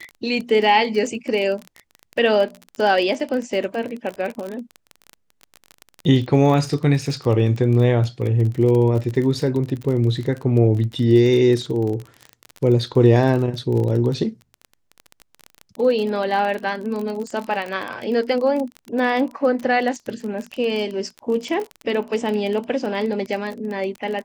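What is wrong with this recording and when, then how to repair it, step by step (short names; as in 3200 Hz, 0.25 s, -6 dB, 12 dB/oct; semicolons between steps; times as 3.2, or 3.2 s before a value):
crackle 28/s -25 dBFS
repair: de-click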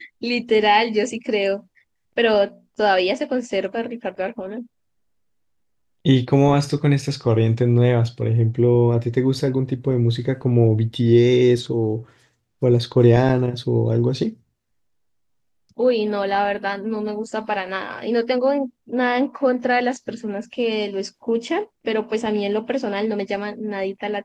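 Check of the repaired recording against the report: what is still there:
none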